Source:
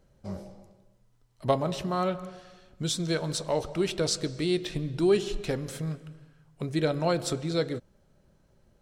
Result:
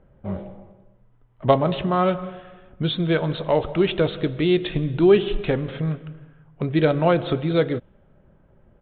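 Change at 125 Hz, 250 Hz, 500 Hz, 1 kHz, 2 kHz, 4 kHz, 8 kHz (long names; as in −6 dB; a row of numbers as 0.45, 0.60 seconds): +8.0 dB, +8.0 dB, +8.0 dB, +8.0 dB, +8.0 dB, +3.0 dB, below −40 dB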